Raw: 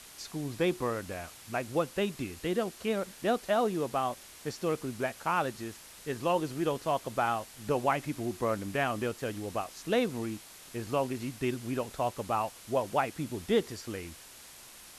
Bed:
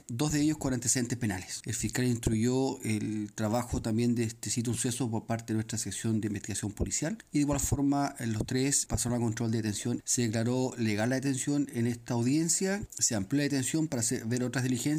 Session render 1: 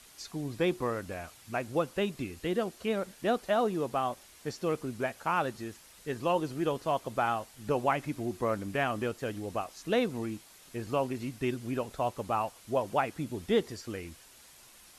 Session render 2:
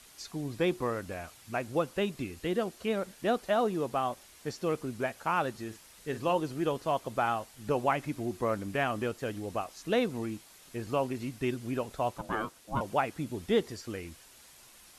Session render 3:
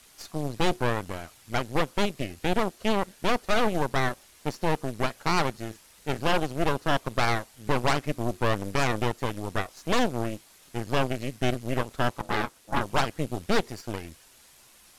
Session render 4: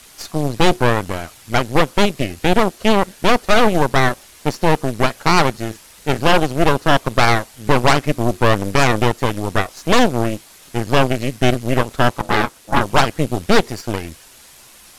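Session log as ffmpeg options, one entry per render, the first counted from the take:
-af "afftdn=nr=6:nf=-51"
-filter_complex "[0:a]asettb=1/sr,asplit=3[a][b][c];[a]atrim=end=5.644[d];[b]atrim=start=5.64:end=6.34,asetpts=PTS-STARTPTS,afade=t=in:d=0.004:c=qsin,afade=t=out:st=0.696:d=0.004:c=qsin,asplit=2[e][f];[f]adelay=45,volume=-12dB[g];[e][g]amix=inputs=2:normalize=0,atrim=end_sample=30870[h];[c]atrim=start=6.336[i];[d][h]acrossfade=d=0.004:c1=hsin:c2=qsin[j];[j][i]acrossfade=d=0.004:c1=qsin:c2=hsin,asettb=1/sr,asplit=3[k][l][m];[k]atrim=end=12.184[n];[l]atrim=start=12.18:end=12.81,asetpts=PTS-STARTPTS,afade=t=in:d=0.004:c=qsin,afade=t=out:st=0.626:d=0.004:c=qsin,aeval=exprs='val(0)*sin(2*PI*420*n/s)':c=same[o];[m]atrim=start=12.806[p];[n][o]acrossfade=d=0.004:c1=hsin:c2=qsin[q];[q][p]acrossfade=d=0.004:c1=qsin:c2=hsin"
-af "aeval=exprs='0.211*(cos(1*acos(clip(val(0)/0.211,-1,1)))-cos(1*PI/2))+0.075*(cos(8*acos(clip(val(0)/0.211,-1,1)))-cos(8*PI/2))':c=same,volume=13.5dB,asoftclip=hard,volume=-13.5dB"
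-af "volume=11dB"

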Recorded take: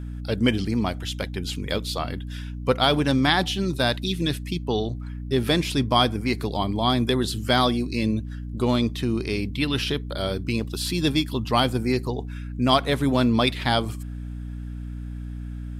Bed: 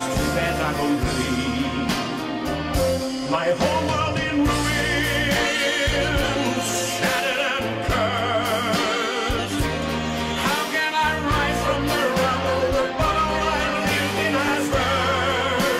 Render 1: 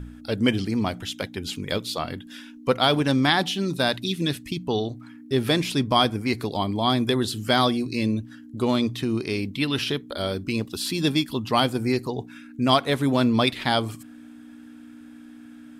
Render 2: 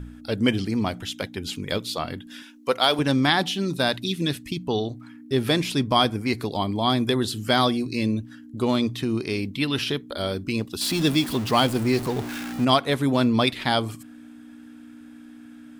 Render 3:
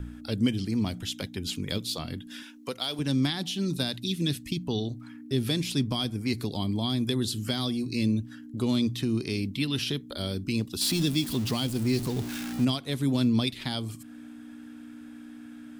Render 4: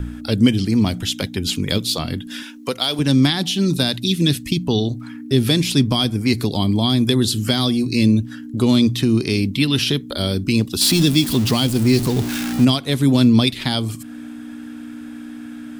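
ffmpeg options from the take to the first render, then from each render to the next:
-af "bandreject=f=60:t=h:w=4,bandreject=f=120:t=h:w=4,bandreject=f=180:t=h:w=4"
-filter_complex "[0:a]asettb=1/sr,asplit=3[a][b][c];[a]atrim=end=2.424[d];[b]atrim=start=2.42:end=2.99,asetpts=PTS-STARTPTS,afade=t=in:d=0.004:c=qsin,afade=t=out:st=0.566:d=0.004:c=qsin,bass=f=250:g=-14,treble=f=4k:g=4[e];[c]atrim=start=2.986[f];[d][e]acrossfade=d=0.004:c1=hsin:c2=qsin[g];[g][f]acrossfade=d=0.004:c1=qsin:c2=hsin,asettb=1/sr,asplit=3[h][i][j];[h]atrim=end=10.814[k];[i]atrim=start=10.81:end=12.65,asetpts=PTS-STARTPTS,afade=t=in:d=0.004:c=qsin,afade=t=out:st=1.836:d=0.004:c=qsin,aeval=exprs='val(0)+0.5*0.0376*sgn(val(0))':c=same[l];[j]atrim=start=12.646[m];[k][l]acrossfade=d=0.004:c1=hsin:c2=qsin[n];[n][m]acrossfade=d=0.004:c1=qsin:c2=hsin"
-filter_complex "[0:a]alimiter=limit=-12dB:level=0:latency=1:release=440,acrossover=split=310|3000[a][b][c];[b]acompressor=threshold=-44dB:ratio=2.5[d];[a][d][c]amix=inputs=3:normalize=0"
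-af "volume=11dB,alimiter=limit=-3dB:level=0:latency=1"

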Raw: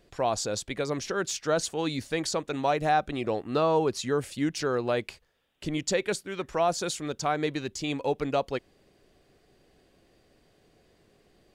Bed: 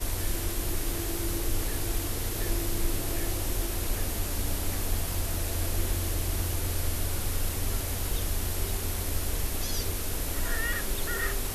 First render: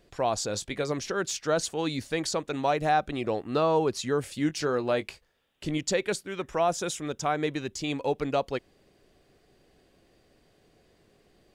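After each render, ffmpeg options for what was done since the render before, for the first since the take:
-filter_complex "[0:a]asettb=1/sr,asplit=3[a][b][c];[a]atrim=end=0.474[d];[b]atrim=start=0.47:end=0.92,asetpts=PTS-STARTPTS,afade=t=in:d=0.004:c=qsin,afade=t=out:st=0.446:d=0.004:c=qsin,asplit=2[e][f];[f]adelay=20,volume=-11.5dB[g];[e][g]amix=inputs=2:normalize=0,atrim=end_sample=19845[h];[c]atrim=start=0.916[i];[d][h]acrossfade=d=0.004:c1=hsin:c2=qsin[j];[j][i]acrossfade=d=0.004:c1=qsin:c2=hsin,asettb=1/sr,asplit=3[k][l][m];[k]atrim=end=4.234[n];[l]atrim=start=4.23:end=5.78,asetpts=PTS-STARTPTS,afade=t=in:d=0.004:c=qsin,afade=t=out:st=1.546:d=0.004:c=qsin,asplit=2[o][p];[p]adelay=20,volume=-11.5dB[q];[o][q]amix=inputs=2:normalize=0,atrim=end_sample=68355[r];[m]atrim=start=5.776[s];[n][r]acrossfade=d=0.004:c1=hsin:c2=qsin[t];[t][s]acrossfade=d=0.004:c1=qsin:c2=hsin,asettb=1/sr,asplit=3[u][v][w];[u]atrim=end=6.324[x];[v]atrim=start=6.32:end=7.74,asetpts=PTS-STARTPTS,afade=t=in:d=0.004:c=qsin,afade=t=out:st=1.416:d=0.004:c=qsin,bandreject=f=4.4k:w=5.2[y];[w]atrim=start=7.736[z];[x][y]acrossfade=d=0.004:c1=hsin:c2=qsin[aa];[aa][z]acrossfade=d=0.004:c1=qsin:c2=hsin"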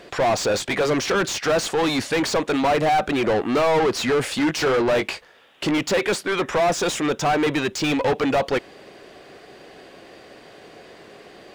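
-filter_complex "[0:a]asplit=2[a][b];[b]highpass=f=720:p=1,volume=31dB,asoftclip=type=tanh:threshold=-12dB[c];[a][c]amix=inputs=2:normalize=0,lowpass=f=2.2k:p=1,volume=-6dB"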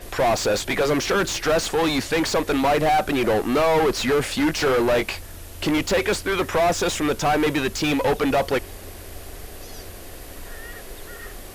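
-filter_complex "[1:a]volume=-8.5dB[a];[0:a][a]amix=inputs=2:normalize=0"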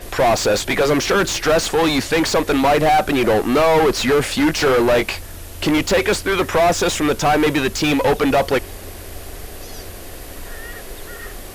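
-af "volume=4.5dB"

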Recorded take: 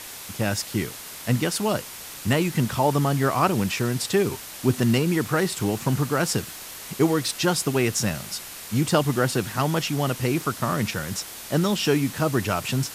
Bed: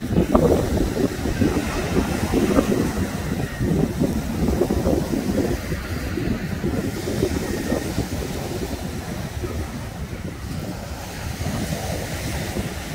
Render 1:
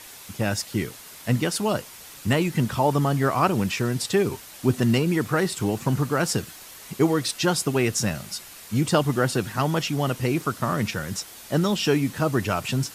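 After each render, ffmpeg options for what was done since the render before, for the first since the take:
-af "afftdn=nr=6:nf=-39"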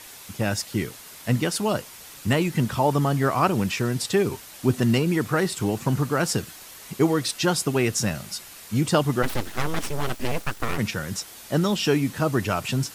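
-filter_complex "[0:a]asplit=3[a][b][c];[a]afade=t=out:st=9.22:d=0.02[d];[b]aeval=exprs='abs(val(0))':c=same,afade=t=in:st=9.22:d=0.02,afade=t=out:st=10.77:d=0.02[e];[c]afade=t=in:st=10.77:d=0.02[f];[d][e][f]amix=inputs=3:normalize=0"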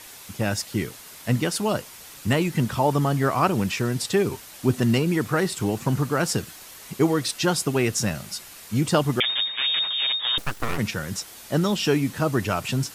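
-filter_complex "[0:a]asettb=1/sr,asplit=3[a][b][c];[a]atrim=end=9.204[d];[b]atrim=start=9.2:end=10.38,asetpts=PTS-STARTPTS,afade=t=in:d=0.004:c=qsin,afade=t=out:st=1.176:d=0.004:c=qsin,lowpass=f=3.1k:t=q:w=0.5098,lowpass=f=3.1k:t=q:w=0.6013,lowpass=f=3.1k:t=q:w=0.9,lowpass=f=3.1k:t=q:w=2.563,afreqshift=-3700[e];[c]atrim=start=10.376[f];[d][e]acrossfade=d=0.004:c1=hsin:c2=qsin[g];[g][f]acrossfade=d=0.004:c1=qsin:c2=hsin"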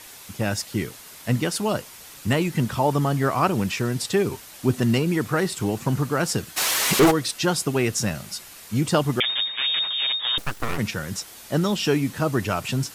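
-filter_complex "[0:a]asplit=3[a][b][c];[a]afade=t=out:st=6.56:d=0.02[d];[b]asplit=2[e][f];[f]highpass=f=720:p=1,volume=32dB,asoftclip=type=tanh:threshold=-8dB[g];[e][g]amix=inputs=2:normalize=0,lowpass=f=6.8k:p=1,volume=-6dB,afade=t=in:st=6.56:d=0.02,afade=t=out:st=7.1:d=0.02[h];[c]afade=t=in:st=7.1:d=0.02[i];[d][h][i]amix=inputs=3:normalize=0"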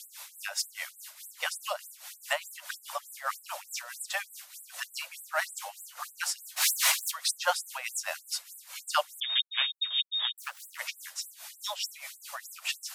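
-af "tremolo=f=4.8:d=0.73,afftfilt=real='re*gte(b*sr/1024,510*pow(7700/510,0.5+0.5*sin(2*PI*3.3*pts/sr)))':imag='im*gte(b*sr/1024,510*pow(7700/510,0.5+0.5*sin(2*PI*3.3*pts/sr)))':win_size=1024:overlap=0.75"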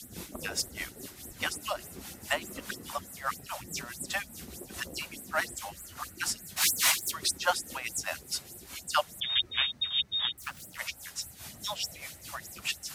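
-filter_complex "[1:a]volume=-27dB[a];[0:a][a]amix=inputs=2:normalize=0"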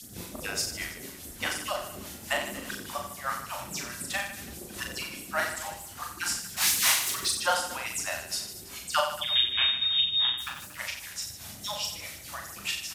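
-filter_complex "[0:a]asplit=2[a][b];[b]adelay=30,volume=-11dB[c];[a][c]amix=inputs=2:normalize=0,aecho=1:1:40|90|152.5|230.6|328.3:0.631|0.398|0.251|0.158|0.1"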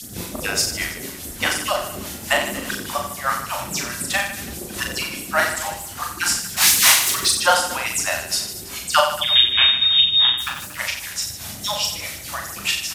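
-af "volume=10dB"

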